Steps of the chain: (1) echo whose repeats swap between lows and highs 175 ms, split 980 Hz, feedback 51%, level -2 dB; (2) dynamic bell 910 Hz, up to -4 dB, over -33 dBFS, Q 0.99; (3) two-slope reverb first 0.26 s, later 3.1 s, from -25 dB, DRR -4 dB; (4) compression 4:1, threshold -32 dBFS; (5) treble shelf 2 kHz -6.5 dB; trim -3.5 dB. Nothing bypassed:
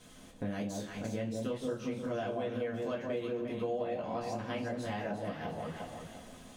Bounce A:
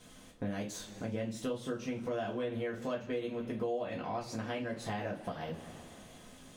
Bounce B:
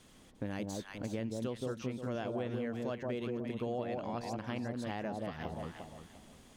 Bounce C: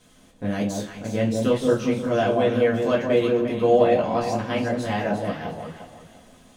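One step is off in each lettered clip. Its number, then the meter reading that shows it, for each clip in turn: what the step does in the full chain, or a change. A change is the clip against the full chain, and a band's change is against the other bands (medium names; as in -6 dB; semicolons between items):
1, momentary loudness spread change +7 LU; 3, crest factor change +2.0 dB; 4, mean gain reduction 10.5 dB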